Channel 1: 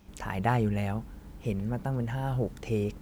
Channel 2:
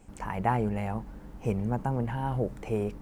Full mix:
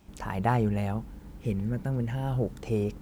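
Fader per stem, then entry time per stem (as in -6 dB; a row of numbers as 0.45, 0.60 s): -1.0, -10.0 dB; 0.00, 0.00 s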